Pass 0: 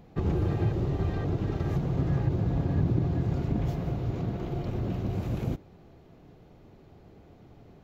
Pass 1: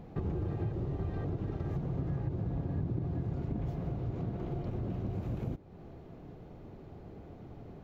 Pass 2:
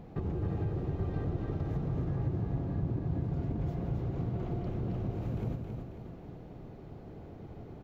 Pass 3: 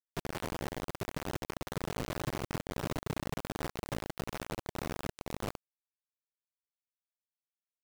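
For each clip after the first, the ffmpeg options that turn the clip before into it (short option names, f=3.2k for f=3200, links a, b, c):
-af "highshelf=f=2.1k:g=-9,acompressor=threshold=-42dB:ratio=2.5,volume=4.5dB"
-af "aecho=1:1:271|542|813|1084|1355|1626:0.562|0.264|0.124|0.0584|0.0274|0.0129"
-filter_complex "[0:a]acrossover=split=130[a][b];[a]asoftclip=type=tanh:threshold=-38dB[c];[c][b]amix=inputs=2:normalize=0,acrusher=bits=4:mix=0:aa=0.000001,volume=-3dB"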